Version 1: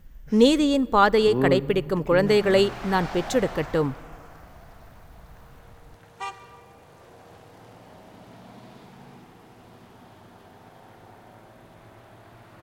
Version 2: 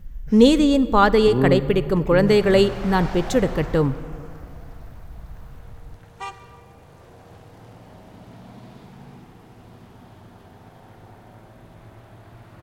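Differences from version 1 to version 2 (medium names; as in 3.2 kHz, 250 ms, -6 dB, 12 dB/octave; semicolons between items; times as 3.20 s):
speech: send +9.5 dB; master: add bass shelf 180 Hz +10 dB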